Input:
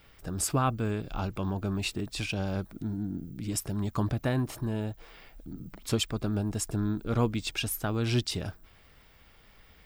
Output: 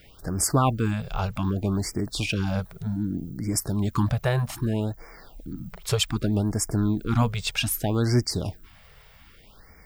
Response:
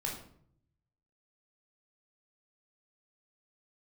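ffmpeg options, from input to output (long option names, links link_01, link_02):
-af "afftfilt=real='re*(1-between(b*sr/1024,250*pow(3400/250,0.5+0.5*sin(2*PI*0.64*pts/sr))/1.41,250*pow(3400/250,0.5+0.5*sin(2*PI*0.64*pts/sr))*1.41))':imag='im*(1-between(b*sr/1024,250*pow(3400/250,0.5+0.5*sin(2*PI*0.64*pts/sr))/1.41,250*pow(3400/250,0.5+0.5*sin(2*PI*0.64*pts/sr))*1.41))':win_size=1024:overlap=0.75,volume=6dB"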